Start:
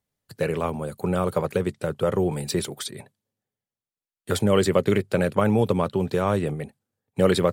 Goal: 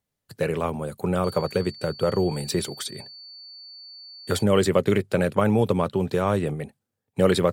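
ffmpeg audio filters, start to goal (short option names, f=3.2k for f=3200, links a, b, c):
-filter_complex "[0:a]asettb=1/sr,asplit=3[a][b][c];[a]atrim=end=1.244[d];[b]atrim=start=1.24:end=4.43,asetpts=PTS-STARTPTS,afade=t=in:d=0.004:c=qsin,afade=t=out:st=3.186:d=0.004:c=qsin,aeval=exprs='val(0)+0.00891*sin(2*PI*4500*n/s)':c=same[e];[c]atrim=start=4.426[f];[d][e]acrossfade=d=0.004:c1=hsin:c2=qsin[g];[g][f]acrossfade=d=0.004:c1=qsin:c2=hsin"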